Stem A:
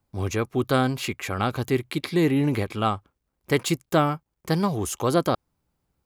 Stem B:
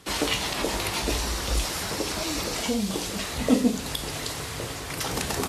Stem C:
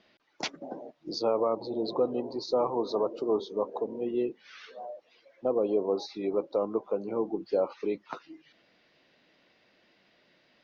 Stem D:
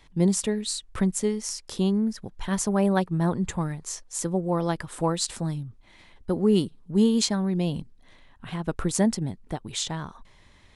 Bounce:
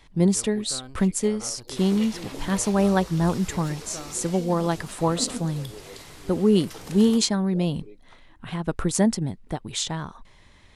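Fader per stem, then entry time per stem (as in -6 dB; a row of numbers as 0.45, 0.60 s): -19.5, -12.5, -17.5, +2.0 dB; 0.00, 1.70, 0.00, 0.00 s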